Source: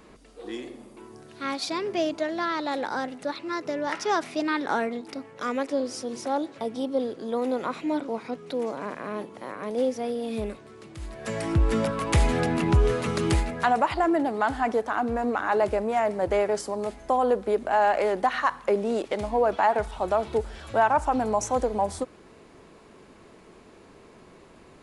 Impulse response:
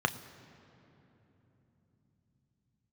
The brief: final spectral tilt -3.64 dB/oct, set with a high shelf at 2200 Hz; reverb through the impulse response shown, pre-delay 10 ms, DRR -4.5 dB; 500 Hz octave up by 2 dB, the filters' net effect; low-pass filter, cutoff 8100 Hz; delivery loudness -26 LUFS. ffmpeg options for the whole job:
-filter_complex "[0:a]lowpass=8.1k,equalizer=f=500:t=o:g=3,highshelf=f=2.2k:g=-7.5,asplit=2[a][b];[1:a]atrim=start_sample=2205,adelay=10[c];[b][c]afir=irnorm=-1:irlink=0,volume=-5dB[d];[a][d]amix=inputs=2:normalize=0,volume=-6dB"

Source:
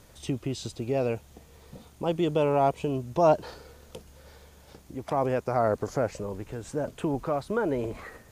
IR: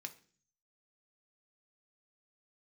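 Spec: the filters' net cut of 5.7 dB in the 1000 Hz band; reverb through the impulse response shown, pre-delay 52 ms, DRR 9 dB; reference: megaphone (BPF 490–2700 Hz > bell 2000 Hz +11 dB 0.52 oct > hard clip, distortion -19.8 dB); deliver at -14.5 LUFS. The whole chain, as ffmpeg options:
-filter_complex "[0:a]equalizer=f=1k:t=o:g=-8.5,asplit=2[a][b];[1:a]atrim=start_sample=2205,adelay=52[c];[b][c]afir=irnorm=-1:irlink=0,volume=-5.5dB[d];[a][d]amix=inputs=2:normalize=0,highpass=490,lowpass=2.7k,equalizer=f=2k:t=o:w=0.52:g=11,asoftclip=type=hard:threshold=-21dB,volume=19.5dB"

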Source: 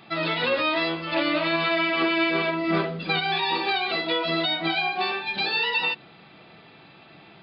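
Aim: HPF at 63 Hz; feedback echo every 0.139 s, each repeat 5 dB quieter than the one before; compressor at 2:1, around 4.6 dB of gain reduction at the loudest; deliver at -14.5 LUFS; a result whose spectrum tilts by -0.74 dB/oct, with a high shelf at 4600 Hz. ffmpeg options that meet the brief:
-af "highpass=63,highshelf=f=4.6k:g=9,acompressor=threshold=-27dB:ratio=2,aecho=1:1:139|278|417|556|695|834|973:0.562|0.315|0.176|0.0988|0.0553|0.031|0.0173,volume=10dB"

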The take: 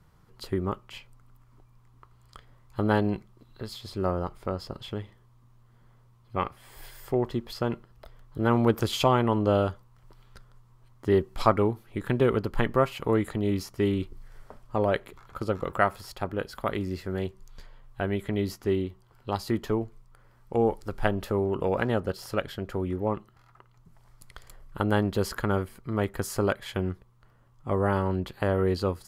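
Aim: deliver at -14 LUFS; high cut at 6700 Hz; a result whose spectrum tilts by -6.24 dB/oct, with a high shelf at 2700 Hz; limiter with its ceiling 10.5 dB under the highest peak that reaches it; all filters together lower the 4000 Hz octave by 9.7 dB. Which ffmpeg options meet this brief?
-af "lowpass=6.7k,highshelf=f=2.7k:g=-7.5,equalizer=f=4k:t=o:g=-6.5,volume=17.5dB,alimiter=limit=0dB:level=0:latency=1"

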